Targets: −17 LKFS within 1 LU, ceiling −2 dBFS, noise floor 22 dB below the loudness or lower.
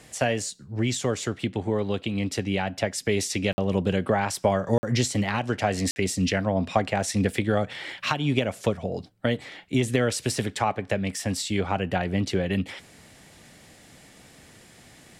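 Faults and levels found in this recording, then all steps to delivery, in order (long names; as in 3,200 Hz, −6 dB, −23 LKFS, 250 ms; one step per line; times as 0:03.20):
number of dropouts 3; longest dropout 50 ms; integrated loudness −26.5 LKFS; sample peak −7.5 dBFS; target loudness −17.0 LKFS
→ repair the gap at 0:03.53/0:04.78/0:05.91, 50 ms
level +9.5 dB
brickwall limiter −2 dBFS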